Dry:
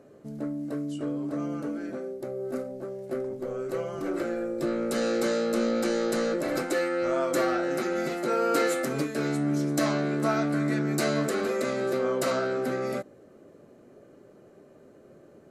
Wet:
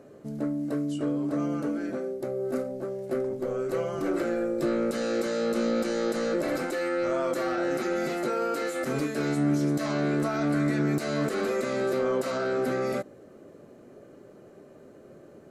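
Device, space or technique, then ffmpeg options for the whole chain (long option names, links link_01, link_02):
de-esser from a sidechain: -filter_complex "[0:a]asplit=2[link_01][link_02];[link_02]highpass=frequency=5600:poles=1,apad=whole_len=683898[link_03];[link_01][link_03]sidechaincompress=threshold=-44dB:ratio=8:attack=2:release=22,volume=3dB"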